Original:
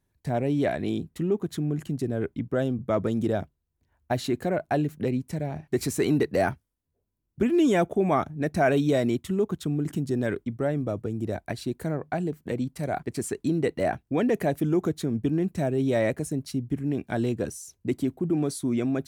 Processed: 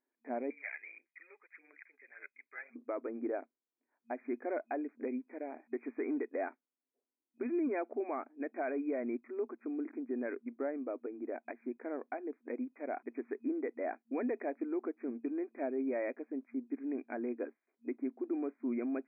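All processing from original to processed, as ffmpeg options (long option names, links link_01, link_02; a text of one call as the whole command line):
ffmpeg -i in.wav -filter_complex "[0:a]asettb=1/sr,asplit=3[link_01][link_02][link_03];[link_01]atrim=end=0.504[link_04];[link_02]atrim=start=0.5:end=2.76,asetpts=PTS-STARTPTS,afade=type=in:duration=0.004:curve=qsin,afade=type=out:start_time=2.256:duration=0.004:curve=qsin,tremolo=f=170:d=0.621,highpass=frequency=2100:width_type=q:width=4.3,aphaser=in_gain=1:out_gain=1:delay=2.5:decay=0.48:speed=1.7:type=sinusoidal[link_05];[link_03]atrim=start=2.756[link_06];[link_04][link_05]acrossfade=duration=0.004:curve1=hsin:curve2=qsin[link_07];[link_07][link_06]acrossfade=duration=0.004:curve1=qsin:curve2=hsin,afftfilt=real='re*between(b*sr/4096,230,2500)':imag='im*between(b*sr/4096,230,2500)':win_size=4096:overlap=0.75,alimiter=limit=-19.5dB:level=0:latency=1:release=308,volume=-8dB" out.wav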